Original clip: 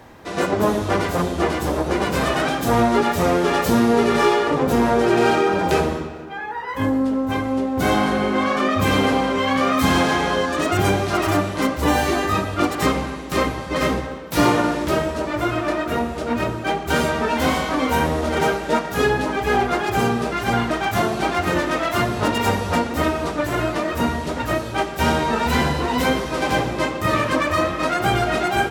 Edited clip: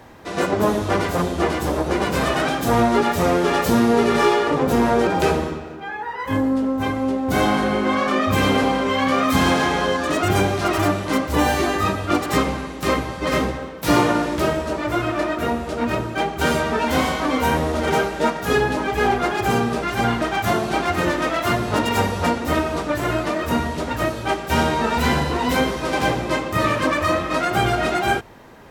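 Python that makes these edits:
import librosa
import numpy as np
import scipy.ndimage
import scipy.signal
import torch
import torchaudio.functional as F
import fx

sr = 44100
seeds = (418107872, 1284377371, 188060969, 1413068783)

y = fx.edit(x, sr, fx.cut(start_s=5.07, length_s=0.49), tone=tone)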